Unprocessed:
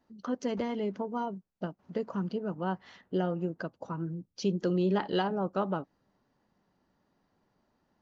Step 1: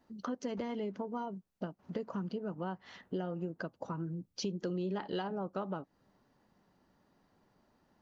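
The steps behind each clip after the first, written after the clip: compressor 3:1, threshold -40 dBFS, peak gain reduction 12.5 dB; gain +3 dB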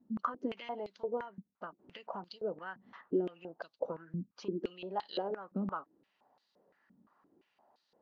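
stepped band-pass 5.8 Hz 220–4100 Hz; gain +11 dB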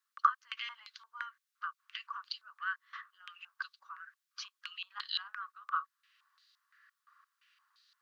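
rippled Chebyshev high-pass 1100 Hz, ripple 3 dB; gain +10.5 dB

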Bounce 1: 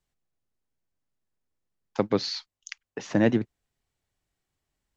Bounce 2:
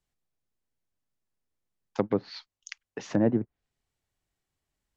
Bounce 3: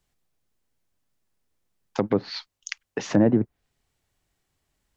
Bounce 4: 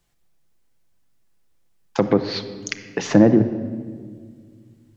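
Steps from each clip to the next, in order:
treble ducked by the level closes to 970 Hz, closed at -21 dBFS; gain -2 dB
limiter -18 dBFS, peak gain reduction 7.5 dB; gain +8.5 dB
shoebox room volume 2700 m³, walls mixed, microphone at 0.78 m; gain +5 dB

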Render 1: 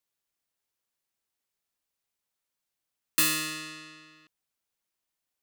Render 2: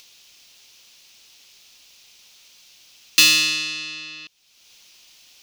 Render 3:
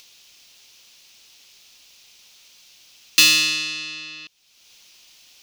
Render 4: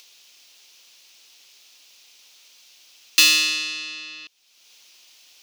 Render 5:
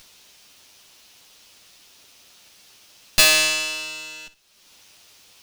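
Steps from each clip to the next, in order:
band shelf 3900 Hz +13.5 dB; in parallel at 0 dB: upward compressor, threshold -24 dBFS; on the sum: gain -3.5 dB
nothing audible
HPF 300 Hz 12 dB/oct; gain -1 dB
minimum comb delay 9.9 ms; flutter echo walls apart 10.5 m, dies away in 0.24 s; gain +2 dB

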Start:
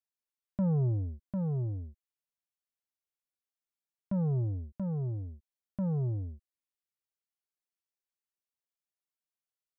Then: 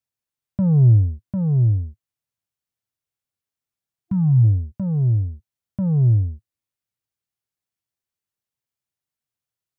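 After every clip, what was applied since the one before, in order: bell 110 Hz +14 dB 1.2 oct; spectral gain 4.06–4.44, 330–700 Hz -23 dB; gain +4 dB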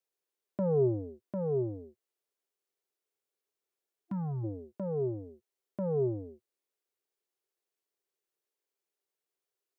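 resonant high-pass 400 Hz, resonance Q 4.7; gain -2.5 dB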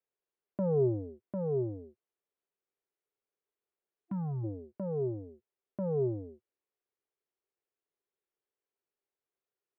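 air absorption 410 m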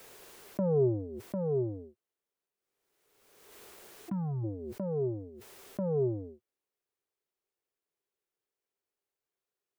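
backwards sustainer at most 39 dB/s; gain +1 dB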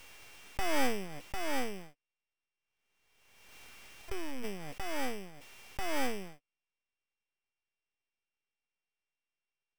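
sample sorter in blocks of 16 samples; full-wave rectifier

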